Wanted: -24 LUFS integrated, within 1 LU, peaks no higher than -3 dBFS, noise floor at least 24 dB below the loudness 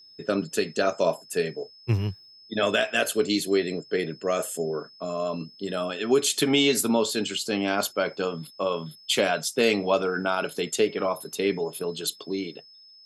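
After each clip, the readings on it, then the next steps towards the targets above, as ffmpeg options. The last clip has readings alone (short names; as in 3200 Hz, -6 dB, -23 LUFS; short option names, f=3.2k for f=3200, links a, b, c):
steady tone 5200 Hz; tone level -49 dBFS; loudness -26.0 LUFS; peak -10.0 dBFS; loudness target -24.0 LUFS
-> -af "bandreject=f=5.2k:w=30"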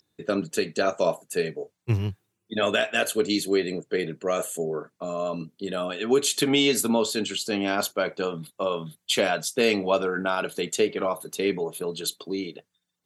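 steady tone none; loudness -26.0 LUFS; peak -10.0 dBFS; loudness target -24.0 LUFS
-> -af "volume=2dB"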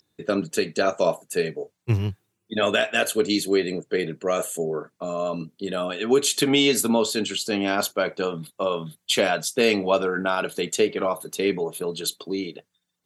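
loudness -24.0 LUFS; peak -8.0 dBFS; noise floor -77 dBFS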